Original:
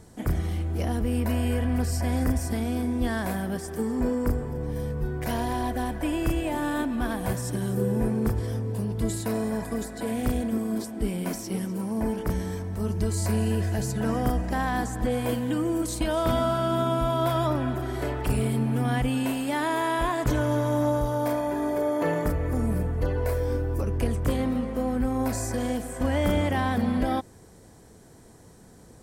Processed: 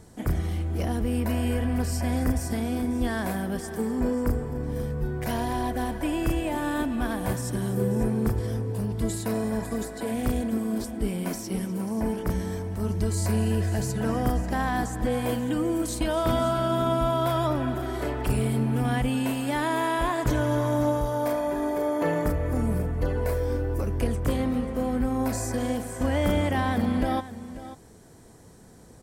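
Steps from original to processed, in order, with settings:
single-tap delay 540 ms −14.5 dB

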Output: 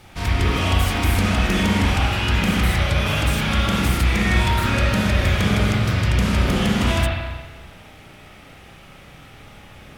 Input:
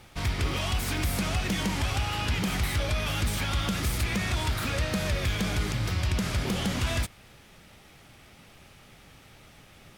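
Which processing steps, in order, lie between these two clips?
spring reverb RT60 1.3 s, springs 33/47 ms, chirp 70 ms, DRR −5 dB
level +3.5 dB

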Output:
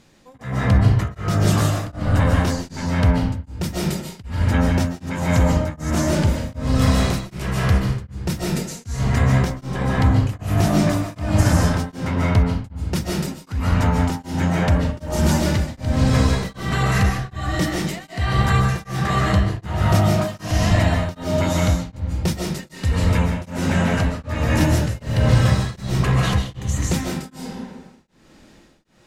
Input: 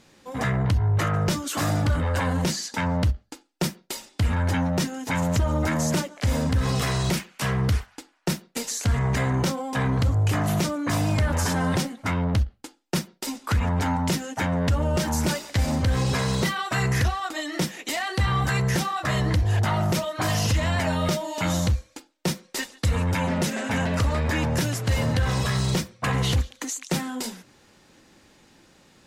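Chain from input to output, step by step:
low-shelf EQ 180 Hz +7 dB
convolution reverb RT60 1.5 s, pre-delay 105 ms, DRR −3.5 dB
tremolo along a rectified sine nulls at 1.3 Hz

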